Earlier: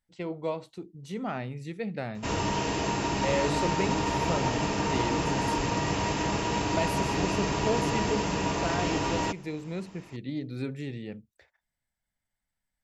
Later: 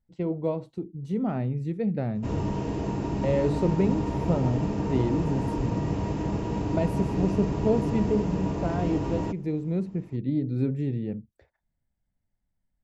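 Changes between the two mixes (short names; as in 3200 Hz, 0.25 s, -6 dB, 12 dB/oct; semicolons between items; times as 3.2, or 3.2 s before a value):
background -5.5 dB; master: add tilt shelf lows +10 dB, about 770 Hz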